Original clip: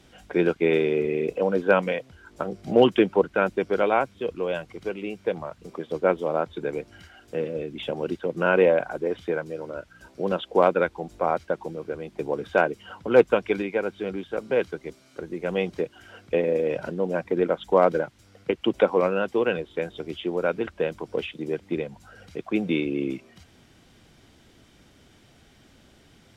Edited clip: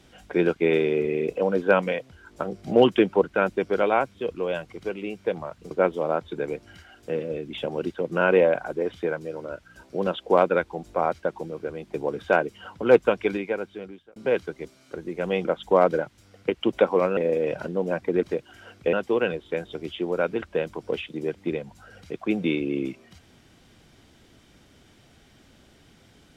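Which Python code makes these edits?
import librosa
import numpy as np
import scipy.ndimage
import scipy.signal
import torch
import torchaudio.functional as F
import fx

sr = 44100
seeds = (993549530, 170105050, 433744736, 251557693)

y = fx.edit(x, sr, fx.cut(start_s=5.71, length_s=0.25),
    fx.fade_out_span(start_s=13.62, length_s=0.79),
    fx.swap(start_s=15.7, length_s=0.7, other_s=17.46, other_length_s=1.72), tone=tone)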